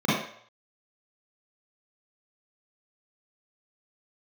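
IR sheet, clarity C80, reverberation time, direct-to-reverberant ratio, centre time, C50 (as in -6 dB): 4.0 dB, 0.60 s, -9.5 dB, 67 ms, -1.5 dB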